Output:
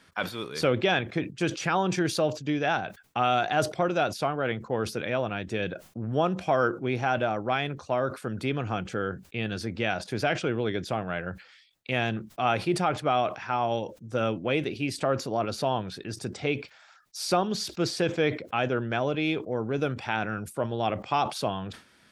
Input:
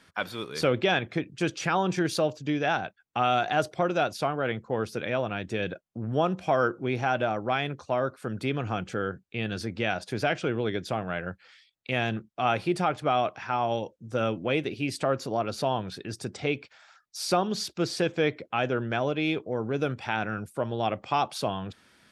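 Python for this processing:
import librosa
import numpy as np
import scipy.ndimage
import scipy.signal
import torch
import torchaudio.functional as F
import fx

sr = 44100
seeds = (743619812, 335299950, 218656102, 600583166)

y = fx.sustainer(x, sr, db_per_s=150.0)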